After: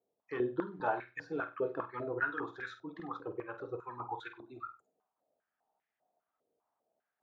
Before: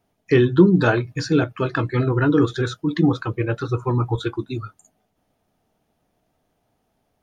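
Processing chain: flutter echo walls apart 8.4 m, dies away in 0.3 s; step-sequenced band-pass 5 Hz 470–1900 Hz; trim -4.5 dB

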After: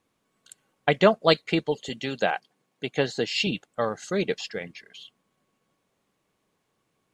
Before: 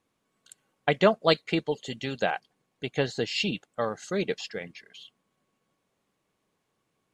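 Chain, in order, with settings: 1.89–3.47 s: high-pass 140 Hz; trim +2.5 dB

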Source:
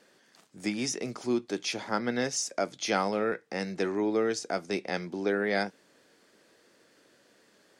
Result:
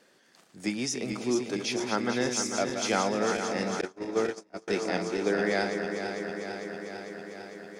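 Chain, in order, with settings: backward echo that repeats 225 ms, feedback 84%, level -7 dB; 3.81–4.68 s: gate -25 dBFS, range -33 dB

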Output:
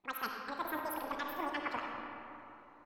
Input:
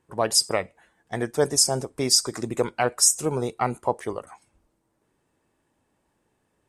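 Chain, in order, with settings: peaking EQ 3.6 kHz -7 dB 2.5 oct; delay 227 ms -20.5 dB; speed mistake 33 rpm record played at 78 rpm; reverse; compression, threshold -30 dBFS, peak gain reduction 12 dB; reverse; low-pass 11 kHz 12 dB/octave; bass shelf 110 Hz +10 dB; on a send at -1 dB: reverberation RT60 3.2 s, pre-delay 15 ms; on the sum: trim -5.5 dB

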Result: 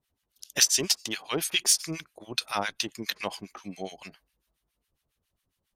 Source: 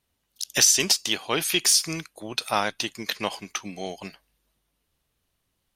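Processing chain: harmonic tremolo 7.3 Hz, depth 100%, crossover 1.1 kHz

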